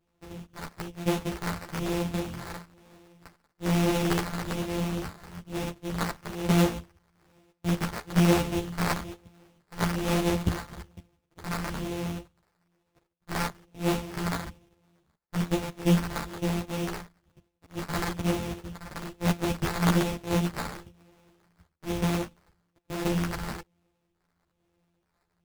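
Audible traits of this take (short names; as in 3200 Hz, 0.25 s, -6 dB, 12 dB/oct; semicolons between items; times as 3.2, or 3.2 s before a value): a buzz of ramps at a fixed pitch in blocks of 256 samples; phasing stages 2, 1.1 Hz, lowest notch 360–3000 Hz; aliases and images of a low sample rate 3100 Hz, jitter 20%; a shimmering, thickened sound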